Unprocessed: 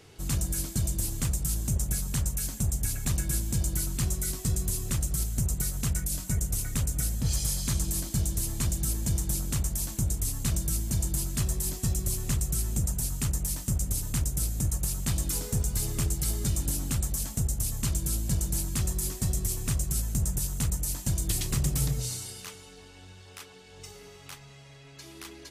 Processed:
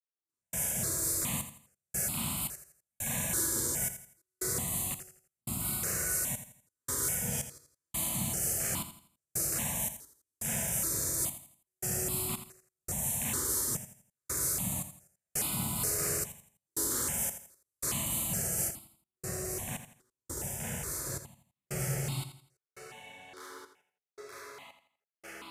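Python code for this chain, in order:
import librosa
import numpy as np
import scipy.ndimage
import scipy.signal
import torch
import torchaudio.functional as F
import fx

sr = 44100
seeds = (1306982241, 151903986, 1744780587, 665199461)

y = scipy.signal.sosfilt(scipy.signal.butter(2, 240.0, 'highpass', fs=sr, output='sos'), x)
y = fx.rev_schroeder(y, sr, rt60_s=1.7, comb_ms=31, drr_db=-8.5)
y = fx.step_gate(y, sr, bpm=85, pattern='...xxxxx...xxx', floor_db=-60.0, edge_ms=4.5)
y = fx.high_shelf(y, sr, hz=4100.0, db=fx.steps((0.0, -3.5), (18.67, -11.5)))
y = fx.echo_feedback(y, sr, ms=83, feedback_pct=35, wet_db=-11.0)
y = fx.phaser_held(y, sr, hz=2.4, low_hz=710.0, high_hz=1700.0)
y = y * librosa.db_to_amplitude(-1.5)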